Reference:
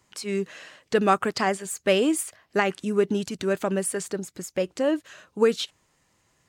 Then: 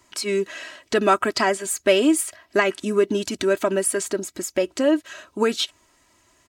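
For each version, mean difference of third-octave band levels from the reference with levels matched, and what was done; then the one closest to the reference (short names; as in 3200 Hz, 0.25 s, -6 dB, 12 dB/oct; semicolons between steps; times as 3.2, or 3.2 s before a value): 3.0 dB: low shelf 210 Hz -3.5 dB; comb 3.1 ms, depth 66%; in parallel at 0 dB: compressor, threshold -27 dBFS, peak gain reduction 12.5 dB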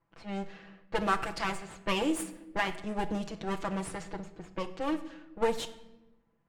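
8.0 dB: minimum comb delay 6 ms; low-pass opened by the level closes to 1400 Hz, open at -21.5 dBFS; shoebox room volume 440 m³, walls mixed, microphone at 0.41 m; gain -7 dB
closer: first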